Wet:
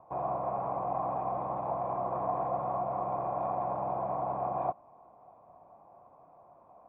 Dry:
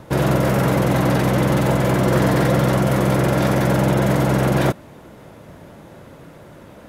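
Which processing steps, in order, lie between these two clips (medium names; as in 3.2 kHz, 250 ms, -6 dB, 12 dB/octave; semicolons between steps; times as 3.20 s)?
cascade formant filter a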